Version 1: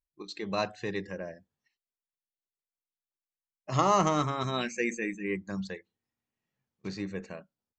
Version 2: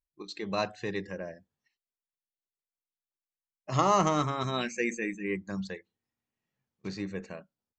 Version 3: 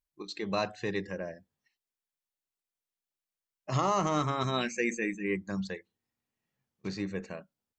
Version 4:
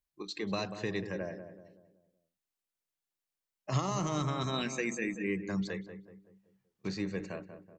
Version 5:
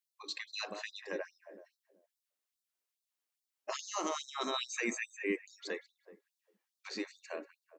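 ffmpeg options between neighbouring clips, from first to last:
ffmpeg -i in.wav -af anull out.wav
ffmpeg -i in.wav -af "alimiter=limit=-18dB:level=0:latency=1:release=83,volume=1dB" out.wav
ffmpeg -i in.wav -filter_complex "[0:a]acrossover=split=270|3000[link_01][link_02][link_03];[link_02]acompressor=threshold=-34dB:ratio=6[link_04];[link_01][link_04][link_03]amix=inputs=3:normalize=0,asplit=2[link_05][link_06];[link_06]adelay=189,lowpass=frequency=1200:poles=1,volume=-8.5dB,asplit=2[link_07][link_08];[link_08]adelay=189,lowpass=frequency=1200:poles=1,volume=0.45,asplit=2[link_09][link_10];[link_10]adelay=189,lowpass=frequency=1200:poles=1,volume=0.45,asplit=2[link_11][link_12];[link_12]adelay=189,lowpass=frequency=1200:poles=1,volume=0.45,asplit=2[link_13][link_14];[link_14]adelay=189,lowpass=frequency=1200:poles=1,volume=0.45[link_15];[link_07][link_09][link_11][link_13][link_15]amix=inputs=5:normalize=0[link_16];[link_05][link_16]amix=inputs=2:normalize=0" out.wav
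ffmpeg -i in.wav -af "bandreject=frequency=279.5:width_type=h:width=4,bandreject=frequency=559:width_type=h:width=4,bandreject=frequency=838.5:width_type=h:width=4,bandreject=frequency=1118:width_type=h:width=4,bandreject=frequency=1397.5:width_type=h:width=4,bandreject=frequency=1677:width_type=h:width=4,bandreject=frequency=1956.5:width_type=h:width=4,bandreject=frequency=2236:width_type=h:width=4,bandreject=frequency=2515.5:width_type=h:width=4,afftfilt=real='re*gte(b*sr/1024,210*pow(3700/210,0.5+0.5*sin(2*PI*2.4*pts/sr)))':imag='im*gte(b*sr/1024,210*pow(3700/210,0.5+0.5*sin(2*PI*2.4*pts/sr)))':win_size=1024:overlap=0.75,volume=1dB" out.wav

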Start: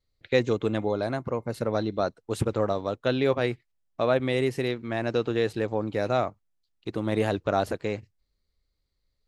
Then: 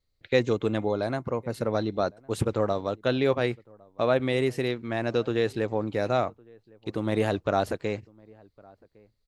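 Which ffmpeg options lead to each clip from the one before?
ffmpeg -i in.wav -filter_complex "[0:a]asplit=2[link_01][link_02];[link_02]adelay=1108,volume=-26dB,highshelf=frequency=4000:gain=-24.9[link_03];[link_01][link_03]amix=inputs=2:normalize=0" out.wav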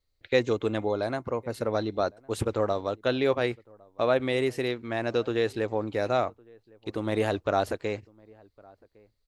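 ffmpeg -i in.wav -af "equalizer=frequency=160:width=1.5:gain=-7" out.wav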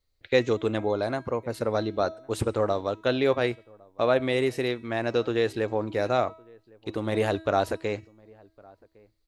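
ffmpeg -i in.wav -af "bandreject=frequency=322.7:width_type=h:width=4,bandreject=frequency=645.4:width_type=h:width=4,bandreject=frequency=968.1:width_type=h:width=4,bandreject=frequency=1290.8:width_type=h:width=4,bandreject=frequency=1613.5:width_type=h:width=4,bandreject=frequency=1936.2:width_type=h:width=4,bandreject=frequency=2258.9:width_type=h:width=4,bandreject=frequency=2581.6:width_type=h:width=4,bandreject=frequency=2904.3:width_type=h:width=4,bandreject=frequency=3227:width_type=h:width=4,bandreject=frequency=3549.7:width_type=h:width=4,bandreject=frequency=3872.4:width_type=h:width=4,bandreject=frequency=4195.1:width_type=h:width=4,bandreject=frequency=4517.8:width_type=h:width=4,bandreject=frequency=4840.5:width_type=h:width=4,bandreject=frequency=5163.2:width_type=h:width=4,bandreject=frequency=5485.9:width_type=h:width=4,bandreject=frequency=5808.6:width_type=h:width=4,bandreject=frequency=6131.3:width_type=h:width=4,bandreject=frequency=6454:width_type=h:width=4,bandreject=frequency=6776.7:width_type=h:width=4,bandreject=frequency=7099.4:width_type=h:width=4,bandreject=frequency=7422.1:width_type=h:width=4,bandreject=frequency=7744.8:width_type=h:width=4,bandreject=frequency=8067.5:width_type=h:width=4,bandreject=frequency=8390.2:width_type=h:width=4,bandreject=frequency=8712.9:width_type=h:width=4,bandreject=frequency=9035.6:width_type=h:width=4,bandreject=frequency=9358.3:width_type=h:width=4,bandreject=frequency=9681:width_type=h:width=4,bandreject=frequency=10003.7:width_type=h:width=4,bandreject=frequency=10326.4:width_type=h:width=4,bandreject=frequency=10649.1:width_type=h:width=4,bandreject=frequency=10971.8:width_type=h:width=4,volume=1.5dB" out.wav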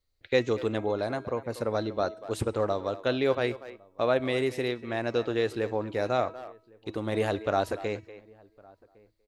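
ffmpeg -i in.wav -filter_complex "[0:a]asplit=2[link_01][link_02];[link_02]adelay=240,highpass=300,lowpass=3400,asoftclip=type=hard:threshold=-18dB,volume=-14dB[link_03];[link_01][link_03]amix=inputs=2:normalize=0,volume=-2.5dB" out.wav

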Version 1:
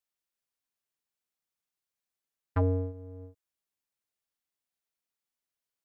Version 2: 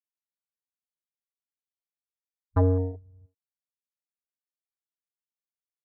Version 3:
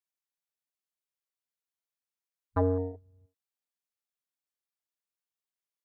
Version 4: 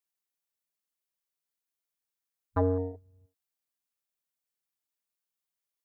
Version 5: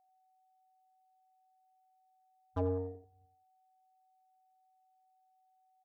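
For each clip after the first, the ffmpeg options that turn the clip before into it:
ffmpeg -i in.wav -af "agate=range=-11dB:threshold=-41dB:ratio=16:detection=peak,afwtdn=0.01,volume=5dB" out.wav
ffmpeg -i in.wav -af "lowshelf=frequency=180:gain=-10.5" out.wav
ffmpeg -i in.wav -af "crystalizer=i=0.5:c=0" out.wav
ffmpeg -i in.wav -filter_complex "[0:a]acrossover=split=930[link_01][link_02];[link_02]asoftclip=type=tanh:threshold=-38dB[link_03];[link_01][link_03]amix=inputs=2:normalize=0,aeval=exprs='val(0)+0.000708*sin(2*PI*750*n/s)':channel_layout=same,asplit=2[link_04][link_05];[link_05]adelay=89,lowpass=frequency=1800:poles=1,volume=-10dB,asplit=2[link_06][link_07];[link_07]adelay=89,lowpass=frequency=1800:poles=1,volume=0.17[link_08];[link_04][link_06][link_08]amix=inputs=3:normalize=0,volume=-7dB" out.wav

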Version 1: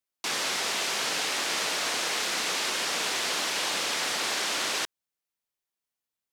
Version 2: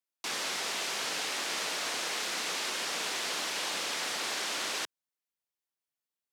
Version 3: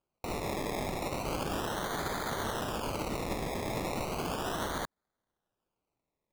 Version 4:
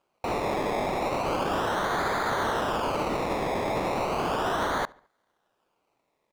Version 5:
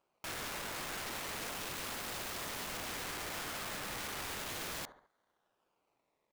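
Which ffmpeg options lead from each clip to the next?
ffmpeg -i in.wav -af "highpass=110,volume=-5dB" out.wav
ffmpeg -i in.wav -af "alimiter=level_in=5dB:limit=-24dB:level=0:latency=1:release=159,volume=-5dB,acrusher=samples=23:mix=1:aa=0.000001:lfo=1:lforange=13.8:lforate=0.35,volume=4.5dB" out.wav
ffmpeg -i in.wav -filter_complex "[0:a]asplit=2[link_01][link_02];[link_02]highpass=frequency=720:poles=1,volume=17dB,asoftclip=type=tanh:threshold=-24dB[link_03];[link_01][link_03]amix=inputs=2:normalize=0,lowpass=frequency=2300:poles=1,volume=-6dB,asplit=2[link_04][link_05];[link_05]adelay=71,lowpass=frequency=4200:poles=1,volume=-24dB,asplit=2[link_06][link_07];[link_07]adelay=71,lowpass=frequency=4200:poles=1,volume=0.49,asplit=2[link_08][link_09];[link_09]adelay=71,lowpass=frequency=4200:poles=1,volume=0.49[link_10];[link_04][link_06][link_08][link_10]amix=inputs=4:normalize=0,volume=5dB" out.wav
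ffmpeg -i in.wav -af "aeval=exprs='(mod(35.5*val(0)+1,2)-1)/35.5':channel_layout=same,volume=-5.5dB" out.wav

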